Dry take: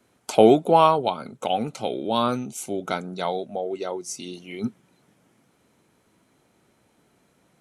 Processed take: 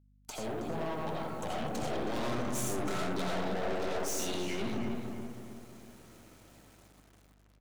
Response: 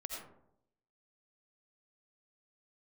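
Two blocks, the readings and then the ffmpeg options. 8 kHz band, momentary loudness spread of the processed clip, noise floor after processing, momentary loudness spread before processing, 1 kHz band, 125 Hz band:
−2.5 dB, 15 LU, −63 dBFS, 16 LU, −15.0 dB, −5.5 dB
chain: -filter_complex "[0:a]equalizer=frequency=86:width_type=o:width=0.45:gain=9,acrossover=split=190[link_01][link_02];[link_02]acompressor=threshold=-28dB:ratio=6[link_03];[link_01][link_03]amix=inputs=2:normalize=0[link_04];[1:a]atrim=start_sample=2205[link_05];[link_04][link_05]afir=irnorm=-1:irlink=0,dynaudnorm=framelen=490:gausssize=7:maxgain=12.5dB,acrusher=bits=8:mix=0:aa=0.000001,equalizer=frequency=6700:width_type=o:width=0.43:gain=3,aeval=exprs='(tanh(35.5*val(0)+0.6)-tanh(0.6))/35.5':channel_layout=same,asplit=2[link_06][link_07];[link_07]adelay=320,lowpass=frequency=2400:poles=1,volume=-5.5dB,asplit=2[link_08][link_09];[link_09]adelay=320,lowpass=frequency=2400:poles=1,volume=0.45,asplit=2[link_10][link_11];[link_11]adelay=320,lowpass=frequency=2400:poles=1,volume=0.45,asplit=2[link_12][link_13];[link_13]adelay=320,lowpass=frequency=2400:poles=1,volume=0.45,asplit=2[link_14][link_15];[link_15]adelay=320,lowpass=frequency=2400:poles=1,volume=0.45[link_16];[link_08][link_10][link_12][link_14][link_16]amix=inputs=5:normalize=0[link_17];[link_06][link_17]amix=inputs=2:normalize=0,aeval=exprs='val(0)+0.001*(sin(2*PI*50*n/s)+sin(2*PI*2*50*n/s)/2+sin(2*PI*3*50*n/s)/3+sin(2*PI*4*50*n/s)/4+sin(2*PI*5*50*n/s)/5)':channel_layout=same,volume=-3dB"

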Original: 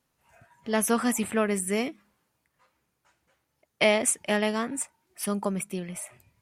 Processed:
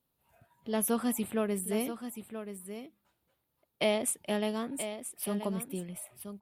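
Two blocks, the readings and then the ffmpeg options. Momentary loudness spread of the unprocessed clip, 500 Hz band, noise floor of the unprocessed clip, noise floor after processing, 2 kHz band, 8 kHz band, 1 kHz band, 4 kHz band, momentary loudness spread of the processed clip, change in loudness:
13 LU, −5.0 dB, −78 dBFS, −81 dBFS, −11.0 dB, −6.5 dB, −7.5 dB, −6.0 dB, 14 LU, −6.5 dB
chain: -filter_complex "[0:a]firequalizer=gain_entry='entry(370,0);entry(1900,-9);entry(3600,1);entry(6100,-10);entry(13000,7)':delay=0.05:min_phase=1,asplit=2[link_01][link_02];[link_02]aecho=0:1:979:0.316[link_03];[link_01][link_03]amix=inputs=2:normalize=0,volume=-4.5dB"

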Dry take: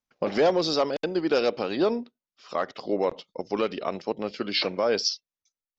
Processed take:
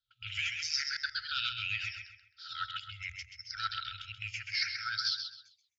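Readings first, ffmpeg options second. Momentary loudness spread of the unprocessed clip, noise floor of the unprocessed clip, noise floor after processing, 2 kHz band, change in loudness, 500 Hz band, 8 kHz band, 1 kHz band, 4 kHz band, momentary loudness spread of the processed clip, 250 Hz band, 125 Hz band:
10 LU, below −85 dBFS, −77 dBFS, +1.0 dB, −8.5 dB, below −40 dB, can't be measured, −11.0 dB, −2.5 dB, 12 LU, below −40 dB, −8.5 dB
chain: -filter_complex "[0:a]afftfilt=real='re*pow(10,21/40*sin(2*PI*(0.62*log(max(b,1)*sr/1024/100)/log(2)-(-0.79)*(pts-256)/sr)))':imag='im*pow(10,21/40*sin(2*PI*(0.62*log(max(b,1)*sr/1024/100)/log(2)-(-0.79)*(pts-256)/sr)))':win_size=1024:overlap=0.75,highpass=60,bandreject=frequency=60:width_type=h:width=6,bandreject=frequency=120:width_type=h:width=6,afftfilt=real='re*(1-between(b*sr/4096,120,1300))':imag='im*(1-between(b*sr/4096,120,1300))':win_size=4096:overlap=0.75,equalizer=frequency=1400:width=1.5:gain=-3,areverse,acompressor=threshold=-30dB:ratio=6,areverse,asplit=2[link_01][link_02];[link_02]adelay=131,lowpass=frequency=4500:poles=1,volume=-5dB,asplit=2[link_03][link_04];[link_04]adelay=131,lowpass=frequency=4500:poles=1,volume=0.35,asplit=2[link_05][link_06];[link_06]adelay=131,lowpass=frequency=4500:poles=1,volume=0.35,asplit=2[link_07][link_08];[link_08]adelay=131,lowpass=frequency=4500:poles=1,volume=0.35[link_09];[link_01][link_03][link_05][link_07][link_09]amix=inputs=5:normalize=0,aresample=16000,aresample=44100"

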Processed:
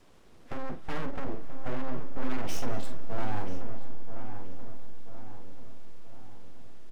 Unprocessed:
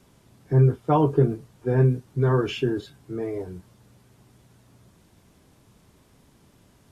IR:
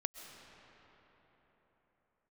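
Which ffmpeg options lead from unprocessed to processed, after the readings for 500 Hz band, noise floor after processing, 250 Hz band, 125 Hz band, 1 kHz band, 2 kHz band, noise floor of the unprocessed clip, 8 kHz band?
−15.5 dB, −51 dBFS, −12.0 dB, −18.0 dB, −9.0 dB, −4.0 dB, −59 dBFS, can't be measured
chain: -filter_complex "[0:a]aemphasis=mode=production:type=75fm,bandreject=frequency=82.01:width_type=h:width=4,bandreject=frequency=164.02:width_type=h:width=4,bandreject=frequency=246.03:width_type=h:width=4,acrossover=split=160[link_01][link_02];[link_02]acompressor=threshold=-28dB:ratio=10[link_03];[link_01][link_03]amix=inputs=2:normalize=0,asplit=2[link_04][link_05];[link_05]alimiter=limit=-23dB:level=0:latency=1:release=230,volume=-1.5dB[link_06];[link_04][link_06]amix=inputs=2:normalize=0,asoftclip=type=hard:threshold=-23dB,adynamicsmooth=sensitivity=2.5:basefreq=3100,aeval=exprs='abs(val(0))':channel_layout=same,asplit=2[link_07][link_08];[link_08]adelay=982,lowpass=frequency=1900:poles=1,volume=-9dB,asplit=2[link_09][link_10];[link_10]adelay=982,lowpass=frequency=1900:poles=1,volume=0.54,asplit=2[link_11][link_12];[link_12]adelay=982,lowpass=frequency=1900:poles=1,volume=0.54,asplit=2[link_13][link_14];[link_14]adelay=982,lowpass=frequency=1900:poles=1,volume=0.54,asplit=2[link_15][link_16];[link_16]adelay=982,lowpass=frequency=1900:poles=1,volume=0.54,asplit=2[link_17][link_18];[link_18]adelay=982,lowpass=frequency=1900:poles=1,volume=0.54[link_19];[link_07][link_09][link_11][link_13][link_15][link_17][link_19]amix=inputs=7:normalize=0,asplit=2[link_20][link_21];[1:a]atrim=start_sample=2205,adelay=47[link_22];[link_21][link_22]afir=irnorm=-1:irlink=0,volume=-9dB[link_23];[link_20][link_23]amix=inputs=2:normalize=0,volume=-3.5dB"

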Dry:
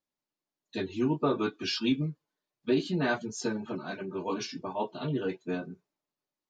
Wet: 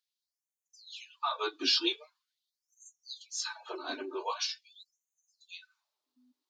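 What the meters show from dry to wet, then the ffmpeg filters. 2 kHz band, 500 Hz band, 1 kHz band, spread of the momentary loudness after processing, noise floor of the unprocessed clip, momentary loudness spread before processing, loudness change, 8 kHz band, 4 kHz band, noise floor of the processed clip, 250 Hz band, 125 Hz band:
−4.5 dB, −10.5 dB, −2.0 dB, 21 LU, below −85 dBFS, 9 LU, −1.0 dB, +3.0 dB, +5.5 dB, below −85 dBFS, −14.0 dB, below −40 dB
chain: -af "aeval=exprs='val(0)+0.00251*(sin(2*PI*50*n/s)+sin(2*PI*2*50*n/s)/2+sin(2*PI*3*50*n/s)/3+sin(2*PI*4*50*n/s)/4+sin(2*PI*5*50*n/s)/5)':channel_layout=same,equalizer=frequency=125:width_type=o:width=1:gain=-6,equalizer=frequency=250:width_type=o:width=1:gain=7,equalizer=frequency=500:width_type=o:width=1:gain=-6,equalizer=frequency=1000:width_type=o:width=1:gain=4,equalizer=frequency=2000:width_type=o:width=1:gain=-4,equalizer=frequency=4000:width_type=o:width=1:gain=9,afftfilt=real='re*gte(b*sr/1024,250*pow(6100/250,0.5+0.5*sin(2*PI*0.44*pts/sr)))':imag='im*gte(b*sr/1024,250*pow(6100/250,0.5+0.5*sin(2*PI*0.44*pts/sr)))':win_size=1024:overlap=0.75"

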